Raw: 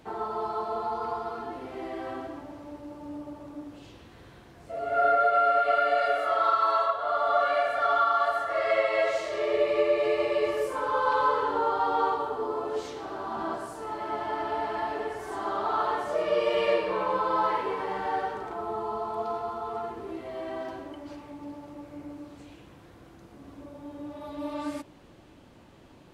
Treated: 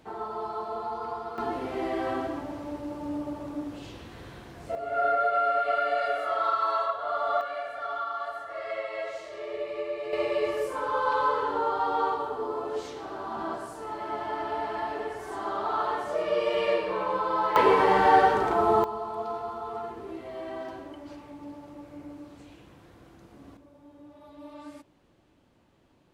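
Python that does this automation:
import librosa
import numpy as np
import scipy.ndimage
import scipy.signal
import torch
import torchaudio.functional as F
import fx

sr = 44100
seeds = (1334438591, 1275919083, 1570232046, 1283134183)

y = fx.gain(x, sr, db=fx.steps((0.0, -2.5), (1.38, 6.0), (4.75, -2.5), (7.41, -9.0), (10.13, -1.0), (17.56, 11.0), (18.84, -1.5), (23.57, -10.5)))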